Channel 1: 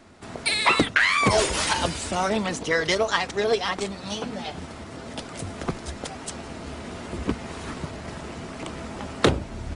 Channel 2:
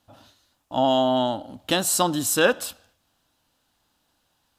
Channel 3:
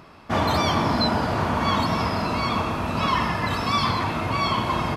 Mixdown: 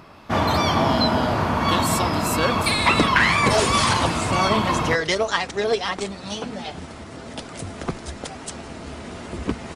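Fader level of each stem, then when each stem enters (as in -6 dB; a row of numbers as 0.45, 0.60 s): +1.0, -5.0, +1.5 dB; 2.20, 0.00, 0.00 s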